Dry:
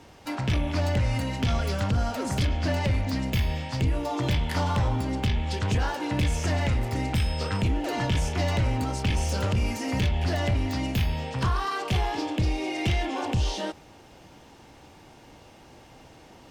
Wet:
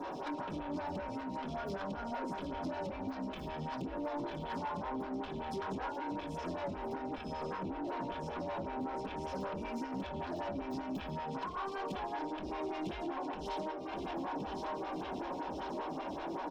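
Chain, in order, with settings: 6.92–9.24 s: treble shelf 6.1 kHz -8 dB; feedback delay 1069 ms, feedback 57%, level -16.5 dB; reverberation RT60 0.35 s, pre-delay 3 ms, DRR -7 dB; compression 12:1, threshold -35 dBFS, peak gain reduction 21.5 dB; graphic EQ with 31 bands 125 Hz -10 dB, 2 kHz -12 dB, 4 kHz +10 dB, 10 kHz -3 dB; saturation -38.5 dBFS, distortion -11 dB; lamp-driven phase shifter 5.2 Hz; trim +6 dB

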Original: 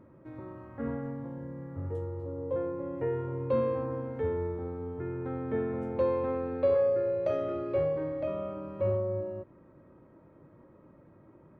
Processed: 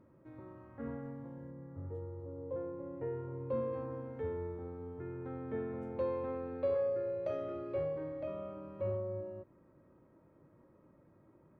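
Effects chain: 1.50–3.72 s: treble shelf 2.3 kHz -> 2.7 kHz -11.5 dB; trim -7.5 dB

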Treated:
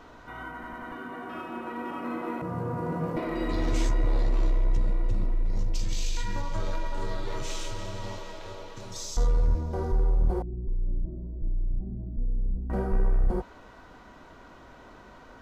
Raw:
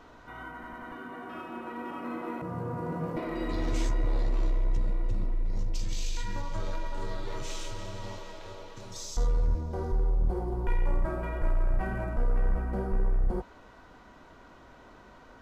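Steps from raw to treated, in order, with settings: 10.42–12.70 s: four-pole ladder low-pass 340 Hz, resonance 20%; trim +3 dB

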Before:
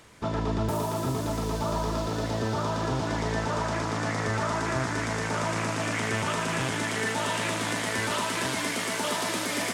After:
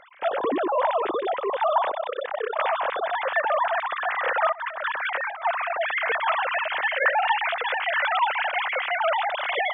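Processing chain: formants replaced by sine waves; 1.91–2.59 s: AM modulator 32 Hz, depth 95%; 4.52–5.45 s: compressor with a negative ratio -33 dBFS, ratio -0.5; trim +4 dB

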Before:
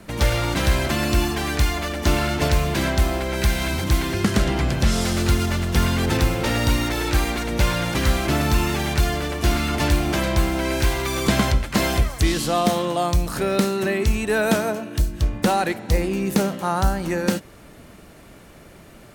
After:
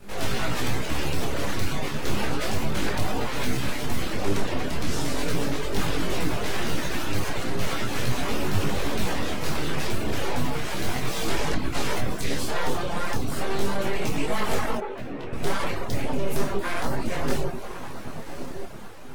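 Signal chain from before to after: 8.97–9.49 s: comb 6.8 ms, depth 62%; 11.35–11.94 s: low-pass 11 kHz; echo that smears into a reverb 1165 ms, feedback 46%, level -12 dB; reverberation RT60 0.95 s, pre-delay 5 ms, DRR -0.5 dB; full-wave rectifier; reverb removal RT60 0.64 s; hard clipper -7.5 dBFS, distortion -24 dB; peak limiter -12 dBFS, peak gain reduction 4.5 dB; 14.78–15.33 s: three-band isolator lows -13 dB, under 250 Hz, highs -20 dB, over 2.9 kHz; detune thickener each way 12 cents

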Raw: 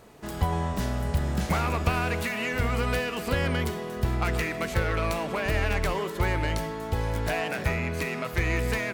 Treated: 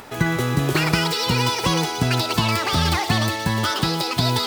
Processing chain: upward compressor, threshold -41 dBFS; on a send: feedback echo behind a high-pass 360 ms, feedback 66%, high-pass 1.6 kHz, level -5.5 dB; on the sum: speed mistake 7.5 ips tape played at 15 ips; trim +6 dB

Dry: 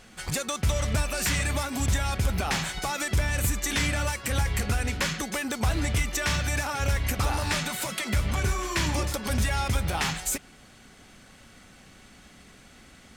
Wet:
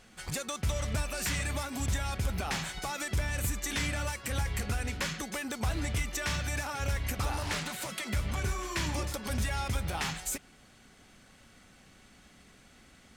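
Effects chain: 7.43–7.90 s: loudspeaker Doppler distortion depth 0.55 ms; trim -6 dB

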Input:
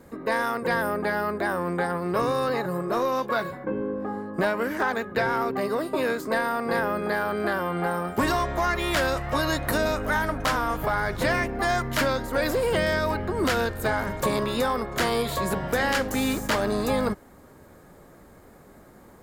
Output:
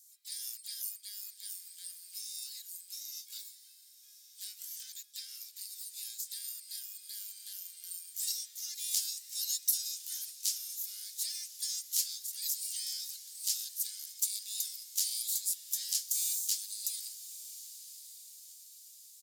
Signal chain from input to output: harmony voices -12 st -7 dB, +12 st -16 dB; inverse Chebyshev high-pass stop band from 970 Hz, stop band 80 dB; echo that smears into a reverb 1149 ms, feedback 46%, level -14 dB; trim +6 dB

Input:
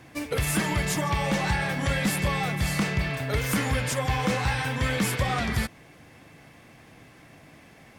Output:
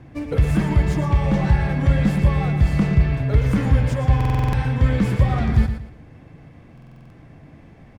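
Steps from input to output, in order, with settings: median filter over 3 samples; tilt EQ -3.5 dB/octave; feedback delay 116 ms, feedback 28%, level -9 dB; buffer glitch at 4.16/6.73 s, samples 2048, times 7; trim -1 dB

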